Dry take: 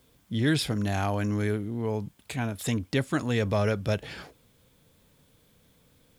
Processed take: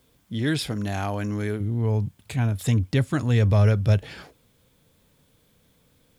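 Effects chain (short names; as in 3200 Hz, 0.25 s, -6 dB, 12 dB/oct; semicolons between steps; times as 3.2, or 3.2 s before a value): 1.6–4.03 bell 100 Hz +12 dB 1.3 oct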